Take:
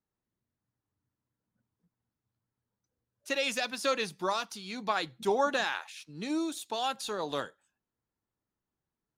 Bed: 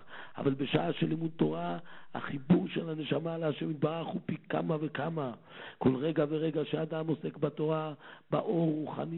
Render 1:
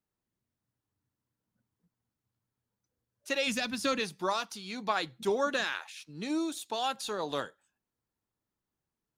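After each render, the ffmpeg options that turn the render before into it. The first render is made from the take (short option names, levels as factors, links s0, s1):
-filter_complex "[0:a]asplit=3[s0][s1][s2];[s0]afade=t=out:st=3.46:d=0.02[s3];[s1]asubboost=boost=6.5:cutoff=230,afade=t=in:st=3.46:d=0.02,afade=t=out:st=3.99:d=0.02[s4];[s2]afade=t=in:st=3.99:d=0.02[s5];[s3][s4][s5]amix=inputs=3:normalize=0,asettb=1/sr,asplit=3[s6][s7][s8];[s6]atrim=end=5.284[s9];[s7]atrim=start=5.28:end=5.81,asetpts=PTS-STARTPTS,afade=t=in:d=0.004:c=qsin,afade=t=out:st=0.526:d=0.004:c=qsin,equalizer=f=810:w=3.4:g=-10[s10];[s8]atrim=start=5.806[s11];[s9][s10]acrossfade=d=0.004:c1=hsin:c2=qsin[s12];[s12][s11]acrossfade=d=0.004:c1=qsin:c2=hsin"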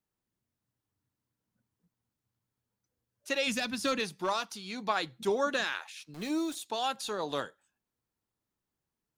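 -filter_complex "[0:a]asplit=3[s0][s1][s2];[s0]afade=t=out:st=3.51:d=0.02[s3];[s1]asoftclip=type=hard:threshold=0.0708,afade=t=in:st=3.51:d=0.02,afade=t=out:st=4.29:d=0.02[s4];[s2]afade=t=in:st=4.29:d=0.02[s5];[s3][s4][s5]amix=inputs=3:normalize=0,asettb=1/sr,asplit=3[s6][s7][s8];[s6]atrim=end=6.144[s9];[s7]atrim=start=6.14:end=6.55,asetpts=PTS-STARTPTS,afade=t=in:d=0.004:c=qsin,afade=t=out:st=0.406:d=0.004:c=qsin,aeval=exprs='val(0)*gte(abs(val(0)),0.00708)':c=same[s10];[s8]atrim=start=6.546[s11];[s9][s10]acrossfade=d=0.004:c1=hsin:c2=qsin[s12];[s12][s11]acrossfade=d=0.004:c1=qsin:c2=hsin"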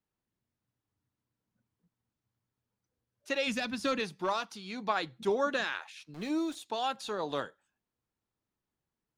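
-af "lowpass=f=3700:p=1"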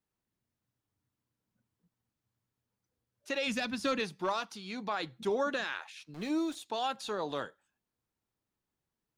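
-af "alimiter=limit=0.0668:level=0:latency=1:release=28"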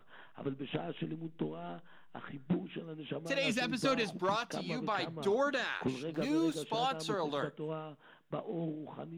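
-filter_complex "[1:a]volume=0.376[s0];[0:a][s0]amix=inputs=2:normalize=0"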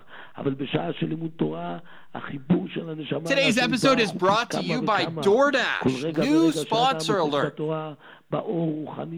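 -af "volume=3.98"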